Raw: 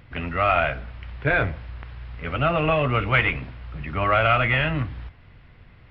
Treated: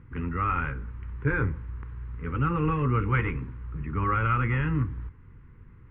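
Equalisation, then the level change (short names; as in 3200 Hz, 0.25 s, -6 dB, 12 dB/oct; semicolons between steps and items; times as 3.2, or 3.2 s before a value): Butterworth band-stop 660 Hz, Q 1.3; LPF 1200 Hz 12 dB/oct; air absorption 170 m; 0.0 dB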